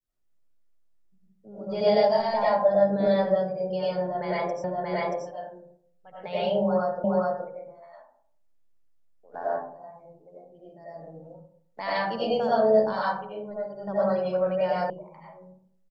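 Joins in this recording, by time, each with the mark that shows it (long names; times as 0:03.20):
0:04.64: the same again, the last 0.63 s
0:07.04: the same again, the last 0.42 s
0:14.90: cut off before it has died away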